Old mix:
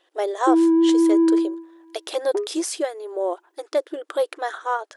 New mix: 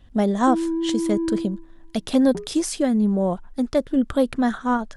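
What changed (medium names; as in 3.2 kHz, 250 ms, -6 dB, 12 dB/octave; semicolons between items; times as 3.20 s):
background -9.5 dB; master: remove brick-wall FIR high-pass 310 Hz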